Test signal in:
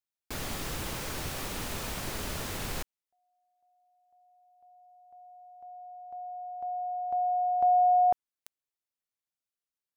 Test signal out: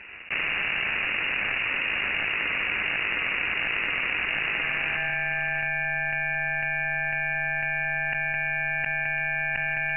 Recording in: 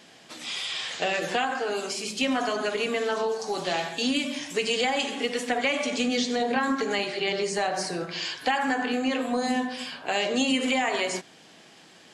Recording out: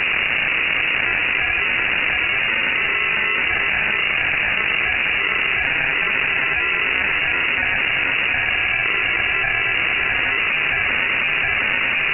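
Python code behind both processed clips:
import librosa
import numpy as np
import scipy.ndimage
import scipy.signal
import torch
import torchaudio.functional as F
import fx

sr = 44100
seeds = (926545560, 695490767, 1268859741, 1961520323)

y = fx.octave_divider(x, sr, octaves=1, level_db=-5.0)
y = scipy.signal.sosfilt(scipy.signal.butter(2, 250.0, 'highpass', fs=sr, output='sos'), y)
y = fx.tilt_eq(y, sr, slope=3.0)
y = y + 0.98 * np.pad(y, (int(6.4 * sr / 1000.0), 0))[:len(y)]
y = fx.sample_hold(y, sr, seeds[0], rate_hz=1600.0, jitter_pct=0)
y = y * np.sin(2.0 * np.pi * 330.0 * np.arange(len(y)) / sr)
y = fx.echo_feedback(y, sr, ms=714, feedback_pct=26, wet_db=-4.5)
y = fx.freq_invert(y, sr, carrier_hz=2800)
y = fx.env_flatten(y, sr, amount_pct=100)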